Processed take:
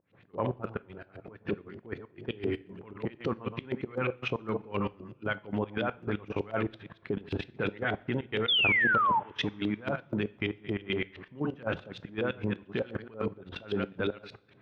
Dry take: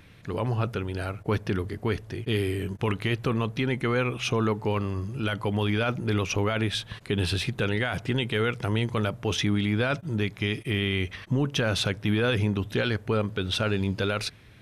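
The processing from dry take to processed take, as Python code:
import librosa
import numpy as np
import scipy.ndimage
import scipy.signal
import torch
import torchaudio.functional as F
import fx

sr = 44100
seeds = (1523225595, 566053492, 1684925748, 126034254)

y = fx.reverse_delay(x, sr, ms=109, wet_db=-6.0)
y = scipy.signal.sosfilt(scipy.signal.butter(2, 150.0, 'highpass', fs=sr, output='sos'), y)
y = fx.high_shelf(y, sr, hz=4100.0, db=-5.5)
y = fx.level_steps(y, sr, step_db=15)
y = fx.filter_lfo_lowpass(y, sr, shape='saw_up', hz=8.6, low_hz=430.0, high_hz=4300.0, q=1.4)
y = fx.volume_shaper(y, sr, bpm=117, per_beat=2, depth_db=-23, release_ms=125.0, shape='slow start')
y = fx.spec_paint(y, sr, seeds[0], shape='fall', start_s=8.48, length_s=0.72, low_hz=840.0, high_hz=3600.0, level_db=-25.0)
y = fx.rev_double_slope(y, sr, seeds[1], early_s=0.38, late_s=2.2, knee_db=-21, drr_db=16.0)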